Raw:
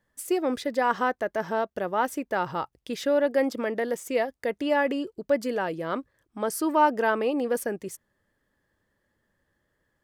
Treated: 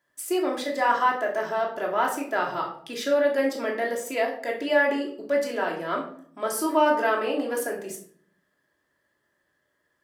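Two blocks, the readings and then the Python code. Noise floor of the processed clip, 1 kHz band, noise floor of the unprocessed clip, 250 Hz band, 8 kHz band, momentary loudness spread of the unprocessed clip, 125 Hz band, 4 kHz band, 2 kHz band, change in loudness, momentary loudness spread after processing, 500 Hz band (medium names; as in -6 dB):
-74 dBFS, +1.5 dB, -76 dBFS, -1.0 dB, +3.0 dB, 10 LU, -5.5 dB, +3.5 dB, +3.5 dB, +1.5 dB, 10 LU, +1.0 dB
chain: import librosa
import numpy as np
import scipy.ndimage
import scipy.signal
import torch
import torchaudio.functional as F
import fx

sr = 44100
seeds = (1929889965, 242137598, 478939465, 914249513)

y = fx.highpass(x, sr, hz=580.0, slope=6)
y = fx.room_shoebox(y, sr, seeds[0], volume_m3=720.0, walls='furnished', distance_m=3.0)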